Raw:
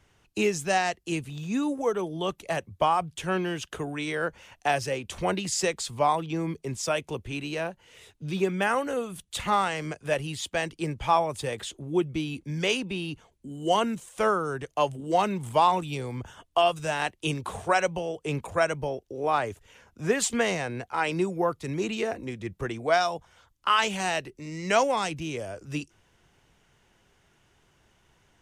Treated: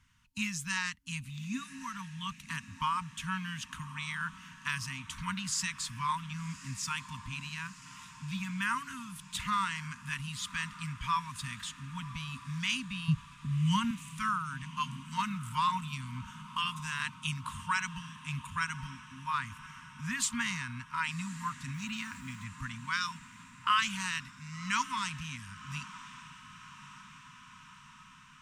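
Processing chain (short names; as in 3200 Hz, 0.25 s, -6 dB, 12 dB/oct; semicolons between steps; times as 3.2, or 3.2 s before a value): 13.08–13.91 resonant low shelf 230 Hz +11 dB, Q 3; 21.74–22.44 requantised 10-bit, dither none; FFT band-reject 270–910 Hz; dynamic EQ 300 Hz, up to -5 dB, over -45 dBFS, Q 1.3; diffused feedback echo 1.109 s, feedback 66%, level -16 dB; gain -4 dB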